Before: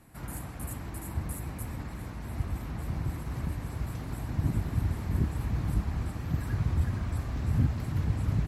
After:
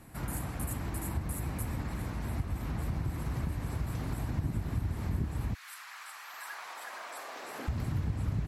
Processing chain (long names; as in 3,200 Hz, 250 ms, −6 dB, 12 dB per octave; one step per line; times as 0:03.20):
0:05.53–0:07.67: high-pass filter 1,500 Hz → 400 Hz 24 dB per octave
downward compressor 3 to 1, threshold −35 dBFS, peak gain reduction 10.5 dB
level +4 dB